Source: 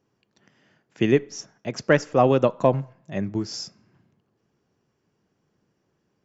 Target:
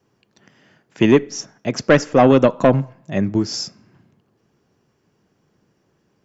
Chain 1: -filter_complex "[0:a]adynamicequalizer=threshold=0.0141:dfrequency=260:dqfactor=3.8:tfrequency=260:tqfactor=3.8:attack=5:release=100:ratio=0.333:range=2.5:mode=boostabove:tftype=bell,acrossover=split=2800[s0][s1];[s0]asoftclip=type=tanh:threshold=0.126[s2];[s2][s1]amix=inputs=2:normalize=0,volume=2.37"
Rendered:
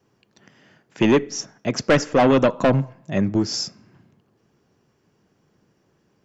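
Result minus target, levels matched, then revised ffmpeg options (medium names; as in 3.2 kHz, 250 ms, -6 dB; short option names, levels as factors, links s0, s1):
saturation: distortion +7 dB
-filter_complex "[0:a]adynamicequalizer=threshold=0.0141:dfrequency=260:dqfactor=3.8:tfrequency=260:tqfactor=3.8:attack=5:release=100:ratio=0.333:range=2.5:mode=boostabove:tftype=bell,acrossover=split=2800[s0][s1];[s0]asoftclip=type=tanh:threshold=0.282[s2];[s2][s1]amix=inputs=2:normalize=0,volume=2.37"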